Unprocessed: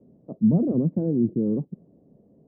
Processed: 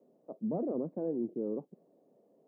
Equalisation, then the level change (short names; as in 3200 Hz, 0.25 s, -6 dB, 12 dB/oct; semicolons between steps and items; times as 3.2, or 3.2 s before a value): HPF 550 Hz 12 dB/oct; 0.0 dB